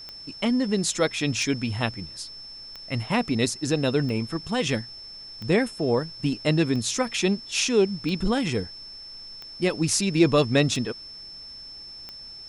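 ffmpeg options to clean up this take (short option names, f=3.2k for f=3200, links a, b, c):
-af "adeclick=t=4,bandreject=f=5.3k:w=30,agate=range=-21dB:threshold=-34dB"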